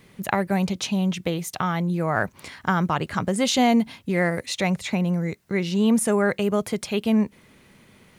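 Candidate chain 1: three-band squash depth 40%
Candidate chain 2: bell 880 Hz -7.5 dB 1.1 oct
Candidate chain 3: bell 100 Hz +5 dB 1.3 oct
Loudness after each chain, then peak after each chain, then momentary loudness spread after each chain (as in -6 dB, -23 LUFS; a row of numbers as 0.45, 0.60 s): -23.5, -25.0, -23.0 LUFS; -3.5, -9.0, -6.0 dBFS; 6, 7, 7 LU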